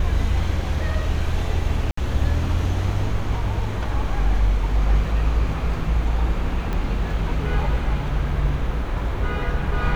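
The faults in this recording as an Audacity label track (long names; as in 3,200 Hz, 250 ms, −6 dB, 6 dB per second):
1.910000	1.970000	drop-out 64 ms
6.730000	6.730000	click −15 dBFS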